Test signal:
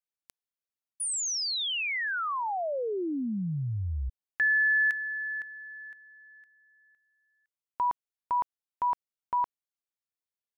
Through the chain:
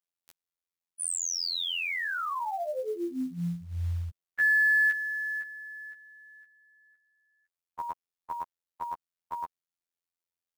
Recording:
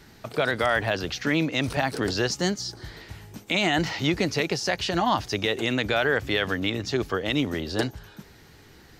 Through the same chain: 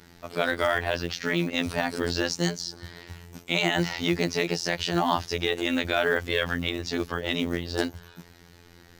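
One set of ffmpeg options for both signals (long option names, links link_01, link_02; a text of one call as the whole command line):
ffmpeg -i in.wav -af "afftfilt=real='hypot(re,im)*cos(PI*b)':imag='0':win_size=2048:overlap=0.75,acrusher=bits=7:mode=log:mix=0:aa=0.000001,volume=2dB" out.wav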